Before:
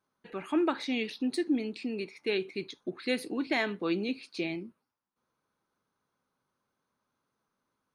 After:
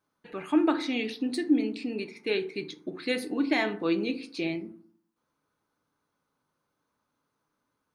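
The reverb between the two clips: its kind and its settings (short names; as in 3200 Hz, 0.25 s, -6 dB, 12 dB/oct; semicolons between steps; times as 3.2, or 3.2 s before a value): FDN reverb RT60 0.54 s, low-frequency decay 1.25×, high-frequency decay 0.4×, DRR 7.5 dB; gain +1.5 dB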